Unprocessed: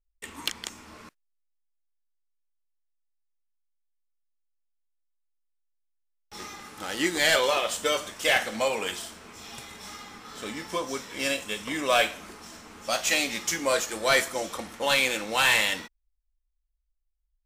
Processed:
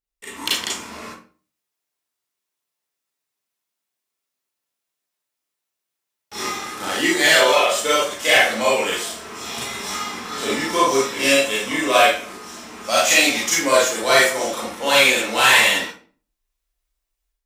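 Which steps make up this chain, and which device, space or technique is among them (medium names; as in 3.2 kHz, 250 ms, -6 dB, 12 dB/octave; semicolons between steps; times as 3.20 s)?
far laptop microphone (reverberation RT60 0.40 s, pre-delay 31 ms, DRR -6 dB; high-pass 180 Hz 6 dB/octave; level rider gain up to 9 dB); trim -1 dB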